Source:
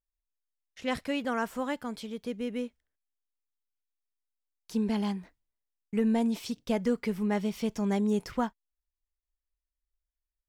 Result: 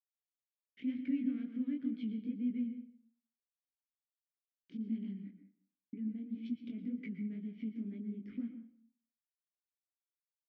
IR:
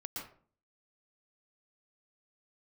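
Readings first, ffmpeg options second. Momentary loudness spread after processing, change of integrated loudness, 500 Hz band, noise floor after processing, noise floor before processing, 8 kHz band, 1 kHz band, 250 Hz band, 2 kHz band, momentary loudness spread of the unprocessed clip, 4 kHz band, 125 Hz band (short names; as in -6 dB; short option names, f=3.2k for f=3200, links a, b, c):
12 LU, -8.5 dB, -26.0 dB, under -85 dBFS, under -85 dBFS, under -30 dB, under -40 dB, -6.5 dB, -20.0 dB, 10 LU, under -20 dB, -11.0 dB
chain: -filter_complex "[0:a]agate=range=-33dB:threshold=-57dB:ratio=3:detection=peak,equalizer=f=230:t=o:w=1.2:g=11,acompressor=threshold=-30dB:ratio=6,alimiter=level_in=9dB:limit=-24dB:level=0:latency=1:release=125,volume=-9dB,adynamicsmooth=sensitivity=6.5:basefreq=1.6k,asplit=3[a][b][c];[a]bandpass=f=270:t=q:w=8,volume=0dB[d];[b]bandpass=f=2.29k:t=q:w=8,volume=-6dB[e];[c]bandpass=f=3.01k:t=q:w=8,volume=-9dB[f];[d][e][f]amix=inputs=3:normalize=0,flanger=delay=16.5:depth=7.7:speed=2,asplit=2[g][h];[h]adelay=198.3,volume=-20dB,highshelf=f=4k:g=-4.46[i];[g][i]amix=inputs=2:normalize=0,asplit=2[j][k];[1:a]atrim=start_sample=2205[l];[k][l]afir=irnorm=-1:irlink=0,volume=-4dB[m];[j][m]amix=inputs=2:normalize=0,adynamicequalizer=threshold=0.00126:dfrequency=1500:dqfactor=0.7:tfrequency=1500:tqfactor=0.7:attack=5:release=100:ratio=0.375:range=2:mode=boostabove:tftype=highshelf,volume=9.5dB"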